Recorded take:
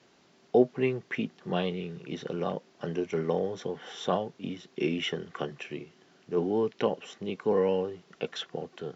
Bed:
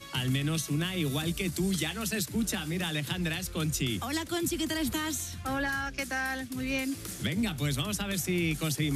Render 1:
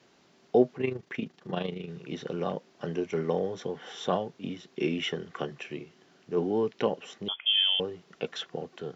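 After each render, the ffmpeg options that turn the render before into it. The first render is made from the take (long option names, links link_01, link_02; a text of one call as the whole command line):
ffmpeg -i in.wav -filter_complex "[0:a]asplit=3[link_01][link_02][link_03];[link_01]afade=type=out:start_time=0.75:duration=0.02[link_04];[link_02]tremolo=f=26:d=0.667,afade=type=in:start_time=0.75:duration=0.02,afade=type=out:start_time=1.88:duration=0.02[link_05];[link_03]afade=type=in:start_time=1.88:duration=0.02[link_06];[link_04][link_05][link_06]amix=inputs=3:normalize=0,asettb=1/sr,asplit=3[link_07][link_08][link_09];[link_07]atrim=end=7.284[link_10];[link_08]atrim=start=7.28:end=7.8,asetpts=PTS-STARTPTS,afade=type=in:duration=0.004:curve=qsin,afade=type=out:start_time=0.516:duration=0.004:curve=qsin,lowpass=frequency=3100:width_type=q:width=0.5098,lowpass=frequency=3100:width_type=q:width=0.6013,lowpass=frequency=3100:width_type=q:width=0.9,lowpass=frequency=3100:width_type=q:width=2.563,afreqshift=-3600[link_11];[link_09]atrim=start=7.796[link_12];[link_10][link_11]acrossfade=duration=0.004:curve1=hsin:curve2=qsin[link_13];[link_13][link_12]acrossfade=duration=0.004:curve1=qsin:curve2=hsin" out.wav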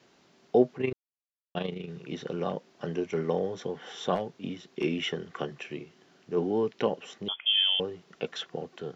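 ffmpeg -i in.wav -filter_complex "[0:a]asplit=3[link_01][link_02][link_03];[link_01]afade=type=out:start_time=4.14:duration=0.02[link_04];[link_02]asoftclip=type=hard:threshold=-22dB,afade=type=in:start_time=4.14:duration=0.02,afade=type=out:start_time=4.83:duration=0.02[link_05];[link_03]afade=type=in:start_time=4.83:duration=0.02[link_06];[link_04][link_05][link_06]amix=inputs=3:normalize=0,asplit=3[link_07][link_08][link_09];[link_07]atrim=end=0.93,asetpts=PTS-STARTPTS,afade=type=out:start_time=0.926:duration=0.004:curve=hsin[link_10];[link_08]atrim=start=0.93:end=1.55,asetpts=PTS-STARTPTS,volume=0[link_11];[link_09]atrim=start=1.55,asetpts=PTS-STARTPTS,afade=type=in:duration=0.004:curve=hsin[link_12];[link_10][link_11][link_12]concat=n=3:v=0:a=1" out.wav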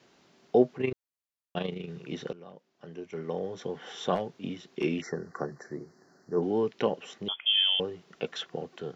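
ffmpeg -i in.wav -filter_complex "[0:a]asplit=3[link_01][link_02][link_03];[link_01]afade=type=out:start_time=5:duration=0.02[link_04];[link_02]asuperstop=centerf=2900:order=12:qfactor=1.2,afade=type=in:start_time=5:duration=0.02,afade=type=out:start_time=6.41:duration=0.02[link_05];[link_03]afade=type=in:start_time=6.41:duration=0.02[link_06];[link_04][link_05][link_06]amix=inputs=3:normalize=0,asplit=2[link_07][link_08];[link_07]atrim=end=2.33,asetpts=PTS-STARTPTS,afade=type=out:start_time=2.326:duration=0.004:curve=hsin:silence=0.133352[link_09];[link_08]atrim=start=2.33,asetpts=PTS-STARTPTS,afade=type=in:duration=1.45:curve=qua:silence=0.133352[link_10];[link_09][link_10]concat=n=2:v=0:a=1" out.wav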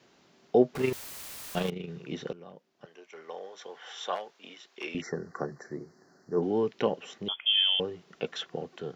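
ffmpeg -i in.wav -filter_complex "[0:a]asettb=1/sr,asplit=3[link_01][link_02][link_03];[link_01]atrim=end=0.754[link_04];[link_02]atrim=start=0.75:end=1.7,asetpts=PTS-STARTPTS,afade=type=in:duration=0.004:curve=qsin,afade=type=out:start_time=0.946:duration=0.004:curve=qsin,aeval=exprs='val(0)+0.5*0.0224*sgn(val(0))':channel_layout=same[link_05];[link_03]atrim=start=1.696[link_06];[link_04][link_05]acrossfade=duration=0.004:curve1=hsin:curve2=qsin[link_07];[link_07][link_06]acrossfade=duration=0.004:curve1=qsin:curve2=hsin,asettb=1/sr,asplit=3[link_08][link_09][link_10];[link_08]atrim=end=2.854[link_11];[link_09]atrim=start=2.85:end=4.95,asetpts=PTS-STARTPTS,afade=type=in:duration=0.004:curve=qsin,afade=type=out:start_time=2.096:duration=0.004:curve=qsin,highpass=740[link_12];[link_10]atrim=start=4.946[link_13];[link_11][link_12]acrossfade=duration=0.004:curve1=hsin:curve2=qsin[link_14];[link_14][link_13]acrossfade=duration=0.004:curve1=qsin:curve2=hsin" out.wav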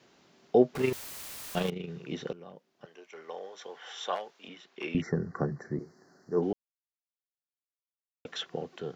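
ffmpeg -i in.wav -filter_complex "[0:a]asettb=1/sr,asplit=3[link_01][link_02][link_03];[link_01]atrim=end=4.484[link_04];[link_02]atrim=start=4.48:end=5.79,asetpts=PTS-STARTPTS,afade=type=in:duration=0.004:curve=qsin,afade=type=out:start_time=1.306:duration=0.004:curve=qsin,bass=frequency=250:gain=12,treble=frequency=4000:gain=-7[link_05];[link_03]atrim=start=5.786[link_06];[link_04][link_05]acrossfade=duration=0.004:curve1=hsin:curve2=qsin[link_07];[link_07][link_06]acrossfade=duration=0.004:curve1=qsin:curve2=hsin,asplit=3[link_08][link_09][link_10];[link_08]atrim=end=6.53,asetpts=PTS-STARTPTS,afade=type=out:start_time=6.526:duration=0.004:curve=hsin[link_11];[link_09]atrim=start=6.53:end=8.25,asetpts=PTS-STARTPTS,volume=0[link_12];[link_10]atrim=start=8.25,asetpts=PTS-STARTPTS,afade=type=in:duration=0.004:curve=hsin[link_13];[link_11][link_12][link_13]concat=n=3:v=0:a=1" out.wav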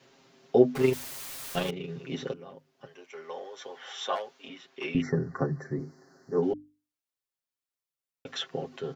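ffmpeg -i in.wav -af "bandreject=frequency=50:width_type=h:width=6,bandreject=frequency=100:width_type=h:width=6,bandreject=frequency=150:width_type=h:width=6,bandreject=frequency=200:width_type=h:width=6,bandreject=frequency=250:width_type=h:width=6,bandreject=frequency=300:width_type=h:width=6,aecho=1:1:7.5:0.86" out.wav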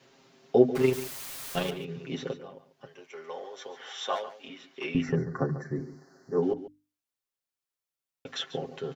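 ffmpeg -i in.wav -af "aecho=1:1:141:0.2" out.wav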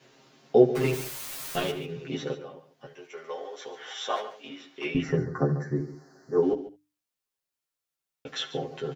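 ffmpeg -i in.wav -filter_complex "[0:a]asplit=2[link_01][link_02];[link_02]adelay=14,volume=-2dB[link_03];[link_01][link_03]amix=inputs=2:normalize=0,aecho=1:1:71:0.15" out.wav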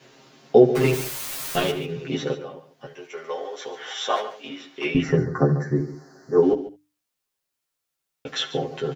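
ffmpeg -i in.wav -af "volume=6dB,alimiter=limit=-3dB:level=0:latency=1" out.wav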